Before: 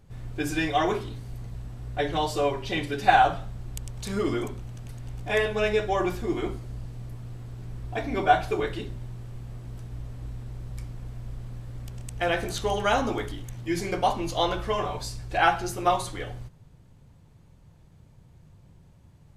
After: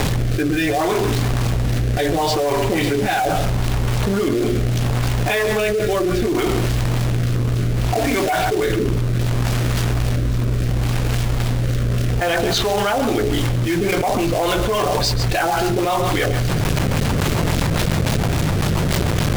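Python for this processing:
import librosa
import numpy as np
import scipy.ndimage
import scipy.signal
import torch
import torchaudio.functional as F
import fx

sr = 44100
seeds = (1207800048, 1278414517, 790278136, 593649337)

y = fx.low_shelf(x, sr, hz=140.0, db=-7.0)
y = fx.rider(y, sr, range_db=4, speed_s=0.5)
y = fx.filter_lfo_lowpass(y, sr, shape='sine', hz=3.6, low_hz=540.0, high_hz=5400.0, q=1.3)
y = fx.quant_companded(y, sr, bits=4)
y = np.clip(10.0 ** (15.5 / 20.0) * y, -1.0, 1.0) / 10.0 ** (15.5 / 20.0)
y = fx.rotary_switch(y, sr, hz=0.7, then_hz=7.0, switch_at_s=13.13)
y = y + 10.0 ** (-16.5 / 20.0) * np.pad(y, (int(135 * sr / 1000.0), 0))[:len(y)]
y = fx.env_flatten(y, sr, amount_pct=100)
y = y * 10.0 ** (2.0 / 20.0)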